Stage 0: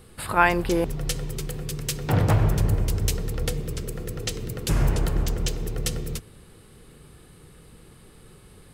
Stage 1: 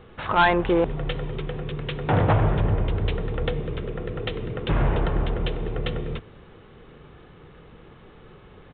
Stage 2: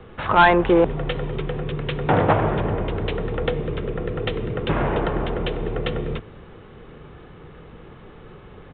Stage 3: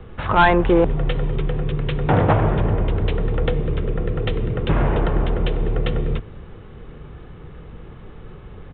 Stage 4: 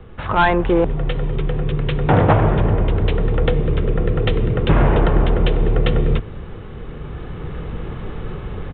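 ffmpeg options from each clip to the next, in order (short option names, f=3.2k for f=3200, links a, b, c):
-af "equalizer=f=820:w=0.49:g=7,aresample=8000,asoftclip=type=tanh:threshold=-11dB,aresample=44100"
-filter_complex "[0:a]lowpass=f=3.2k:p=1,acrossover=split=180|550|1600[a][b][c][d];[a]acompressor=threshold=-31dB:ratio=6[e];[e][b][c][d]amix=inputs=4:normalize=0,volume=5dB"
-af "lowshelf=f=130:g=11,volume=-1dB"
-af "dynaudnorm=f=580:g=3:m=12dB,volume=-1dB"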